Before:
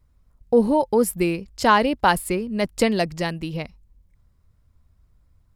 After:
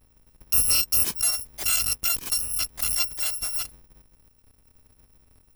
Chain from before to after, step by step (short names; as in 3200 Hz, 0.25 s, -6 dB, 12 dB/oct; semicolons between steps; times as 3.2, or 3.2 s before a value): FFT order left unsorted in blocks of 256 samples; limiter -12.5 dBFS, peak gain reduction 7.5 dB; 1.15–3.33 core saturation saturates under 670 Hz